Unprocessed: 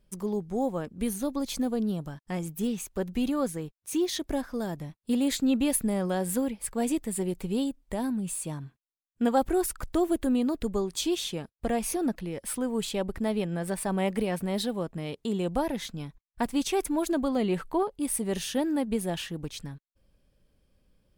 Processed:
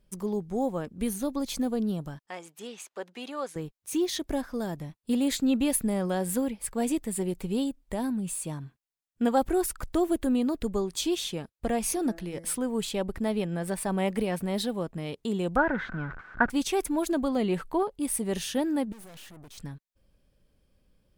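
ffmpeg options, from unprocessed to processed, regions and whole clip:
ffmpeg -i in.wav -filter_complex "[0:a]asettb=1/sr,asplit=3[link_01][link_02][link_03];[link_01]atrim=end=2.264[link_04];[link_02]atrim=start=2.26:end=3.56,asetpts=PTS-STARTPTS,afade=type=in:duration=0.004:curve=qsin,afade=type=out:start_time=1.296:duration=0.004:curve=qsin,adynamicsmooth=sensitivity=6:basefreq=6500,highpass=600[link_05];[link_03]atrim=start=3.556[link_06];[link_04][link_05]acrossfade=duration=0.004:curve1=hsin:curve2=qsin[link_07];[link_07][link_06]acrossfade=duration=0.004:curve1=qsin:curve2=hsin,asettb=1/sr,asplit=3[link_08][link_09][link_10];[link_08]atrim=end=11.814[link_11];[link_09]atrim=start=11.81:end=12.56,asetpts=PTS-STARTPTS,afade=type=in:duration=0.004:curve=qsin,afade=type=out:start_time=0.746:duration=0.004:curve=qsin,equalizer=frequency=7000:width_type=o:width=1.5:gain=4,bandreject=frequency=166.3:width_type=h:width=4,bandreject=frequency=332.6:width_type=h:width=4,bandreject=frequency=498.9:width_type=h:width=4,bandreject=frequency=665.2:width_type=h:width=4,bandreject=frequency=831.5:width_type=h:width=4,bandreject=frequency=997.8:width_type=h:width=4,bandreject=frequency=1164.1:width_type=h:width=4,bandreject=frequency=1330.4:width_type=h:width=4,bandreject=frequency=1496.7:width_type=h:width=4,bandreject=frequency=1663:width_type=h:width=4,bandreject=frequency=1829.3:width_type=h:width=4,bandreject=frequency=1995.6:width_type=h:width=4,bandreject=frequency=2161.9:width_type=h:width=4[link_12];[link_10]atrim=start=12.556[link_13];[link_11][link_12]acrossfade=duration=0.004:curve1=hsin:curve2=qsin[link_14];[link_14][link_13]acrossfade=duration=0.004:curve1=qsin:curve2=hsin,asettb=1/sr,asplit=3[link_15][link_16][link_17];[link_15]atrim=end=15.564[link_18];[link_16]atrim=start=15.56:end=16.5,asetpts=PTS-STARTPTS,afade=type=in:duration=0.004:curve=qsin,afade=type=out:start_time=0.936:duration=0.004:curve=qsin,aeval=exprs='val(0)+0.5*0.0133*sgn(val(0))':channel_layout=same,lowpass=frequency=1500:width_type=q:width=12[link_19];[link_17]atrim=start=16.496[link_20];[link_18][link_19]acrossfade=duration=0.004:curve1=hsin:curve2=qsin[link_21];[link_21][link_20]acrossfade=duration=0.004:curve1=qsin:curve2=hsin,asettb=1/sr,asplit=3[link_22][link_23][link_24];[link_22]atrim=end=18.924[link_25];[link_23]atrim=start=18.92:end=19.58,asetpts=PTS-STARTPTS,afade=type=in:duration=0.004:curve=qsin,afade=type=out:start_time=0.656:duration=0.004:curve=qsin,highshelf=frequency=6700:gain=9,aeval=exprs='(tanh(224*val(0)+0.7)-tanh(0.7))/224':channel_layout=same[link_26];[link_24]atrim=start=19.576[link_27];[link_25][link_26]acrossfade=duration=0.004:curve1=hsin:curve2=qsin[link_28];[link_28][link_27]acrossfade=duration=0.004:curve1=qsin:curve2=hsin" out.wav

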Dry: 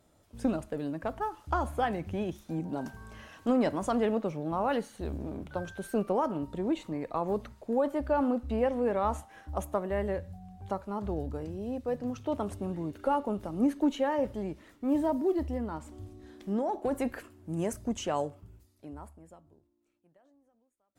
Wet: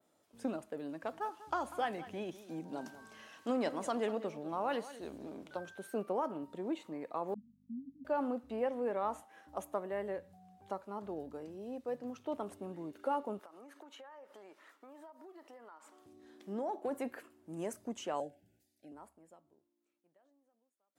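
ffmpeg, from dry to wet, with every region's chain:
ffmpeg -i in.wav -filter_complex "[0:a]asettb=1/sr,asplit=3[link_01][link_02][link_03];[link_01]atrim=end=0.894[link_04];[link_02]atrim=start=0.89:end=5.57,asetpts=PTS-STARTPTS,afade=type=in:duration=0.004:curve=qsin,afade=type=out:start_time=4.676:duration=0.004:curve=qsin,equalizer=frequency=5200:width_type=o:width=2.1:gain=6.5,aecho=1:1:194:0.178,atrim=end_sample=206388[link_05];[link_03]atrim=start=5.566[link_06];[link_04][link_05]acrossfade=duration=0.004:curve1=hsin:curve2=qsin[link_07];[link_07][link_06]acrossfade=duration=0.004:curve1=qsin:curve2=hsin,asettb=1/sr,asplit=3[link_08][link_09][link_10];[link_08]atrim=end=7.344[link_11];[link_09]atrim=start=7.34:end=8.05,asetpts=PTS-STARTPTS,afade=type=in:duration=0.004:curve=qsin,afade=type=out:start_time=0.706:duration=0.004:curve=qsin,asuperpass=centerf=210:order=12:qfactor=2,aeval=exprs='val(0)+0.00316*(sin(2*PI*50*n/s)+sin(2*PI*2*50*n/s)/2+sin(2*PI*3*50*n/s)/3+sin(2*PI*4*50*n/s)/4+sin(2*PI*5*50*n/s)/5)':channel_layout=same[link_12];[link_10]atrim=start=8.046[link_13];[link_11][link_12]acrossfade=duration=0.004:curve1=hsin:curve2=qsin[link_14];[link_14][link_13]acrossfade=duration=0.004:curve1=qsin:curve2=hsin,asettb=1/sr,asplit=3[link_15][link_16][link_17];[link_15]atrim=end=13.394[link_18];[link_16]atrim=start=13.39:end=16.06,asetpts=PTS-STARTPTS,afade=type=in:duration=0.004:curve=qsin,afade=type=out:start_time=2.666:duration=0.004:curve=qsin,highpass=510,equalizer=frequency=1300:width_type=o:width=1.1:gain=8,acompressor=threshold=-43dB:ratio=20:attack=3.2:release=140:knee=1:detection=peak[link_19];[link_17]atrim=start=16.056[link_20];[link_18][link_19]acrossfade=duration=0.004:curve1=hsin:curve2=qsin[link_21];[link_21][link_20]acrossfade=duration=0.004:curve1=qsin:curve2=hsin,asettb=1/sr,asplit=3[link_22][link_23][link_24];[link_22]atrim=end=18.204[link_25];[link_23]atrim=start=18.2:end=18.92,asetpts=PTS-STARTPTS,afade=type=in:duration=0.004:curve=qsin,afade=type=out:start_time=0.716:duration=0.004:curve=qsin,asuperstop=centerf=1100:order=20:qfactor=1.8,equalizer=frequency=410:width_type=o:width=0.2:gain=-12.5[link_26];[link_24]atrim=start=18.916[link_27];[link_25][link_26]acrossfade=duration=0.004:curve1=hsin:curve2=qsin[link_28];[link_28][link_27]acrossfade=duration=0.004:curve1=qsin:curve2=hsin,adynamicequalizer=threshold=0.00141:dfrequency=5700:dqfactor=0.83:tfrequency=5700:tqfactor=0.83:attack=5:release=100:ratio=0.375:range=2:mode=cutabove:tftype=bell,highpass=250,volume=-6dB" out.wav

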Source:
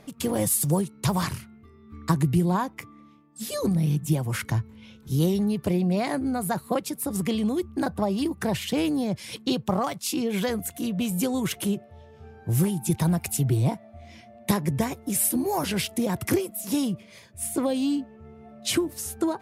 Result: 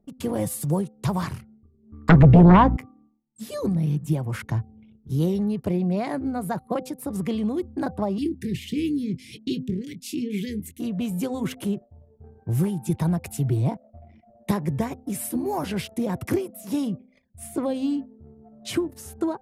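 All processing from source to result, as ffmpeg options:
ffmpeg -i in.wav -filter_complex "[0:a]asettb=1/sr,asplit=3[link_01][link_02][link_03];[link_01]atrim=end=2.094[link_04];[link_02]atrim=start=2.09:end=2.77,asetpts=PTS-STARTPTS,afade=type=in:duration=0.004:curve=qsin,afade=type=out:start_time=0.676:duration=0.004:curve=qsin,lowpass=2400,aeval=exprs='val(0)+0.0158*(sin(2*PI*60*n/s)+sin(2*PI*2*60*n/s)/2+sin(2*PI*3*60*n/s)/3+sin(2*PI*4*60*n/s)/4+sin(2*PI*5*60*n/s)/5)':channel_layout=same,aeval=exprs='0.422*sin(PI/2*3.55*val(0)/0.422)':channel_layout=same[link_05];[link_03]atrim=start=2.766[link_06];[link_04][link_05]acrossfade=duration=0.004:curve1=hsin:curve2=qsin[link_07];[link_07][link_06]acrossfade=duration=0.004:curve1=qsin:curve2=hsin,asettb=1/sr,asplit=3[link_08][link_09][link_10];[link_08]atrim=end=8.184[link_11];[link_09]atrim=start=8.18:end=10.8,asetpts=PTS-STARTPTS,afade=type=in:duration=0.004:curve=qsin,afade=type=out:start_time=2.616:duration=0.004:curve=qsin,asuperstop=centerf=900:order=12:qfactor=0.59,asplit=2[link_12][link_13];[link_13]adelay=24,volume=-12dB[link_14];[link_12][link_14]amix=inputs=2:normalize=0,atrim=end_sample=115542[link_15];[link_10]atrim=start=10.796[link_16];[link_11][link_15]acrossfade=duration=0.004:curve1=hsin:curve2=qsin[link_17];[link_17][link_16]acrossfade=duration=0.004:curve1=qsin:curve2=hsin,anlmdn=0.1,highshelf=frequency=2400:gain=-9.5,bandreject=frequency=256.4:width_type=h:width=4,bandreject=frequency=512.8:width_type=h:width=4,bandreject=frequency=769.2:width_type=h:width=4" out.wav

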